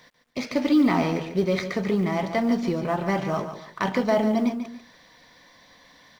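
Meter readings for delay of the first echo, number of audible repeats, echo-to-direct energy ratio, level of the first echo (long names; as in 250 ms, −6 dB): 143 ms, 2, −9.0 dB, −9.5 dB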